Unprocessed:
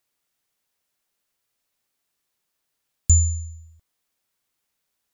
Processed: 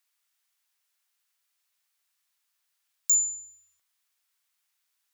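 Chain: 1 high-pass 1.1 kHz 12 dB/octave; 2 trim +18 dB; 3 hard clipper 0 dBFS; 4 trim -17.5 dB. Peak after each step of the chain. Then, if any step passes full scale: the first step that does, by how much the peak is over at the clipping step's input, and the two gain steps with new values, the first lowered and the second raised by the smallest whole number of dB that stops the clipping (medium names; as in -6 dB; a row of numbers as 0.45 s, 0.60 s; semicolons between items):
-12.5 dBFS, +5.5 dBFS, 0.0 dBFS, -17.5 dBFS; step 2, 5.5 dB; step 2 +12 dB, step 4 -11.5 dB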